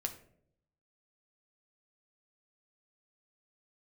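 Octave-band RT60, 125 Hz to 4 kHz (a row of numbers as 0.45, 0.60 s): 1.0, 0.90, 0.80, 0.50, 0.45, 0.35 s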